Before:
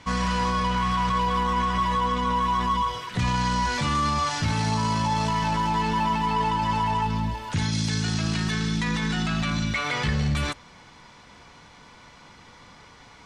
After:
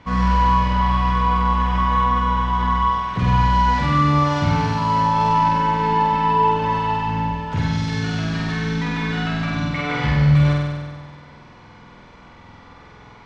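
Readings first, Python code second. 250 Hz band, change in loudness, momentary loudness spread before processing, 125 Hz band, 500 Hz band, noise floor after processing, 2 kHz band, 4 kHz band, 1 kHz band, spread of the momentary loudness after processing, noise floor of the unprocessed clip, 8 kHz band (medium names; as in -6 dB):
+4.5 dB, +5.5 dB, 2 LU, +7.5 dB, +6.0 dB, -45 dBFS, +3.0 dB, -1.0 dB, +6.5 dB, 7 LU, -50 dBFS, no reading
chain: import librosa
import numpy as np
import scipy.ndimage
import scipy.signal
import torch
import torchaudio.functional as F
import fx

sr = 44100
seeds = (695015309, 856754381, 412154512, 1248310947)

p1 = fx.spacing_loss(x, sr, db_at_10k=24)
p2 = p1 + fx.room_flutter(p1, sr, wall_m=8.2, rt60_s=1.5, dry=0)
y = p2 * 10.0 ** (3.0 / 20.0)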